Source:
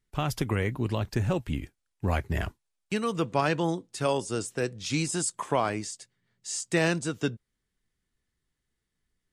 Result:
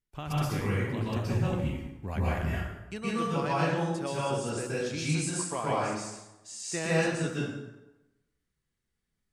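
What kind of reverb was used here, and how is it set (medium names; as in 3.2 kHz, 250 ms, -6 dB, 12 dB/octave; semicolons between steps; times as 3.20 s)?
plate-style reverb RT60 1 s, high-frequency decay 0.7×, pre-delay 110 ms, DRR -8 dB; trim -10 dB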